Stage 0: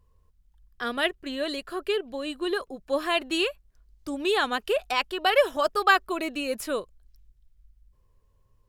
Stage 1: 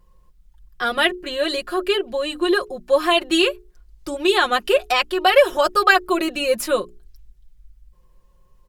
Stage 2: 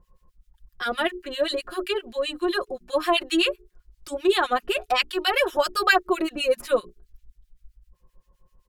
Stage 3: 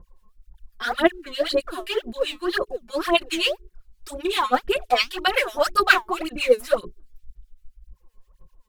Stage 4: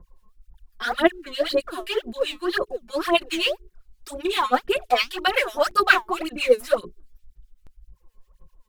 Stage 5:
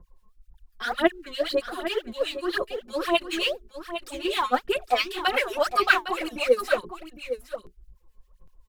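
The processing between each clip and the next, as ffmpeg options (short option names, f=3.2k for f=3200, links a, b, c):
-filter_complex "[0:a]bandreject=f=60:t=h:w=6,bandreject=f=120:t=h:w=6,bandreject=f=180:t=h:w=6,bandreject=f=240:t=h:w=6,bandreject=f=300:t=h:w=6,bandreject=f=360:t=h:w=6,bandreject=f=420:t=h:w=6,aecho=1:1:5.6:0.83,asplit=2[a][b];[b]alimiter=limit=-14dB:level=0:latency=1:release=142,volume=-2dB[c];[a][c]amix=inputs=2:normalize=0,volume=1.5dB"
-filter_complex "[0:a]acrossover=split=1400[a][b];[a]aeval=exprs='val(0)*(1-1/2+1/2*cos(2*PI*7.7*n/s))':c=same[c];[b]aeval=exprs='val(0)*(1-1/2-1/2*cos(2*PI*7.7*n/s))':c=same[d];[c][d]amix=inputs=2:normalize=0"
-af "aphaser=in_gain=1:out_gain=1:delay=4.7:decay=0.78:speed=1.9:type=sinusoidal,volume=-3dB"
-filter_complex "[0:a]acrossover=split=110|3900[a][b][c];[a]alimiter=level_in=15dB:limit=-24dB:level=0:latency=1:release=62,volume=-15dB[d];[c]volume=33dB,asoftclip=hard,volume=-33dB[e];[d][b][e]amix=inputs=3:normalize=0"
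-af "aecho=1:1:808:0.299,volume=-3dB"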